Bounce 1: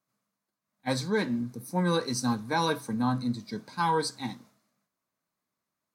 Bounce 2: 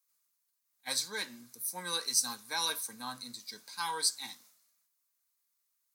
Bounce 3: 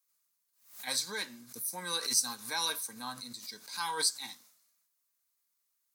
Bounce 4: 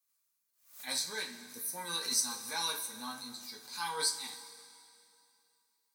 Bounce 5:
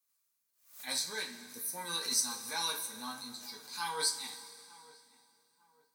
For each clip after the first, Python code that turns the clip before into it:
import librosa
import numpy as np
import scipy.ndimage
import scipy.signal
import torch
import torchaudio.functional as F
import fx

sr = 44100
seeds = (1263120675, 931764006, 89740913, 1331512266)

y1 = np.diff(x, prepend=0.0)
y1 = y1 * librosa.db_to_amplitude(7.5)
y2 = fx.pre_swell(y1, sr, db_per_s=120.0)
y3 = fx.rev_double_slope(y2, sr, seeds[0], early_s=0.22, late_s=2.6, knee_db=-18, drr_db=0.0)
y3 = y3 * librosa.db_to_amplitude(-4.5)
y4 = fx.echo_filtered(y3, sr, ms=900, feedback_pct=35, hz=1400.0, wet_db=-20)